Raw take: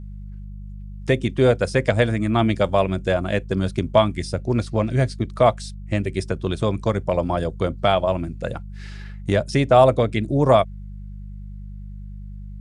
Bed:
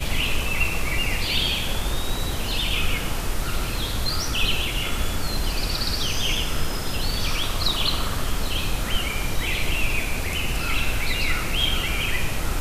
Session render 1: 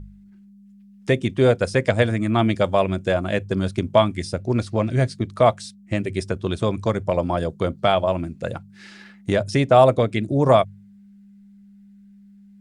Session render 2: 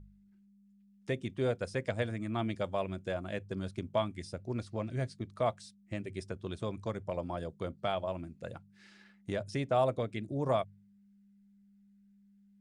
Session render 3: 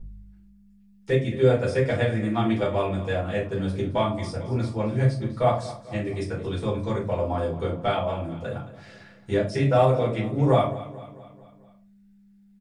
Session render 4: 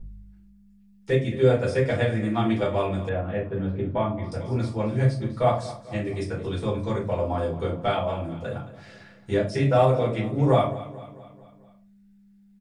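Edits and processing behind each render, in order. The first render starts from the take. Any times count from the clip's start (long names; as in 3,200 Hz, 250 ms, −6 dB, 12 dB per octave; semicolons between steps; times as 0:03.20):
hum removal 50 Hz, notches 3
level −15 dB
repeating echo 221 ms, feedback 53%, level −16 dB; rectangular room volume 190 cubic metres, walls furnished, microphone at 4.6 metres
0:03.09–0:04.32: high-frequency loss of the air 490 metres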